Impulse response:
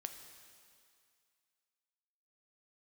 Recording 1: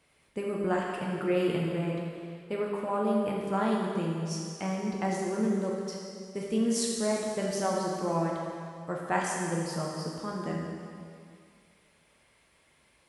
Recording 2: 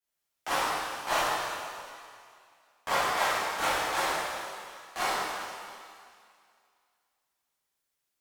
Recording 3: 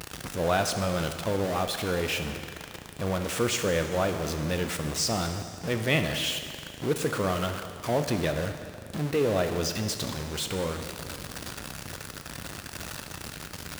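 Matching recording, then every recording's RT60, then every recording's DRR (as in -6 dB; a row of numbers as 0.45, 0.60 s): 3; 2.2, 2.2, 2.2 s; -3.0, -13.0, 6.0 dB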